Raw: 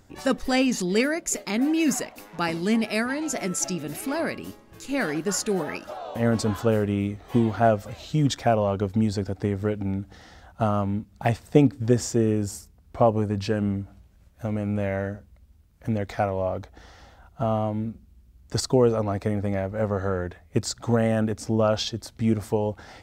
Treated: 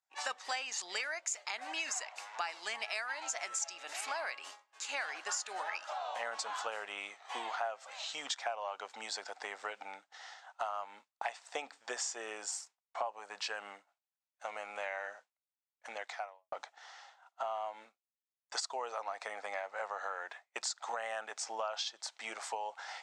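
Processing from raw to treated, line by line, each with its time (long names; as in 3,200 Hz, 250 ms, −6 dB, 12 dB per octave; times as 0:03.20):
0:15.92–0:16.52: fade out quadratic
whole clip: elliptic band-pass filter 790–7,800 Hz, stop band 80 dB; downward expander −49 dBFS; downward compressor 5 to 1, threshold −38 dBFS; level +2.5 dB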